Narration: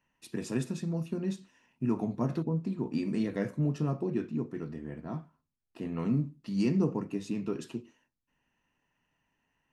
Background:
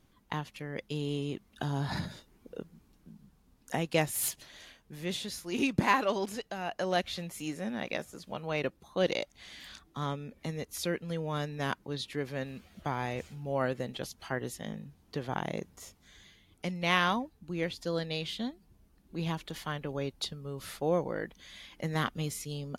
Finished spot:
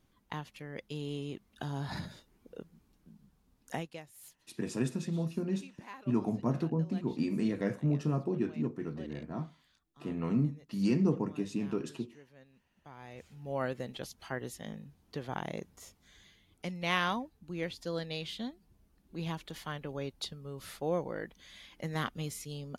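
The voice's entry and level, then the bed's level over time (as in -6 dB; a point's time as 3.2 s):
4.25 s, -0.5 dB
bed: 3.78 s -4.5 dB
4.02 s -22 dB
12.75 s -22 dB
13.52 s -3.5 dB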